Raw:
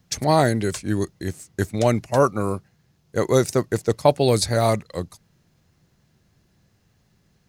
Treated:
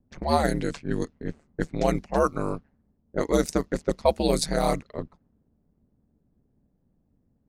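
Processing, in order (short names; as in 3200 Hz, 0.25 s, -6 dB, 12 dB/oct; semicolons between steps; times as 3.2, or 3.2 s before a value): low-pass opened by the level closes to 540 Hz, open at -15.5 dBFS; ring modulator 74 Hz; gain -1.5 dB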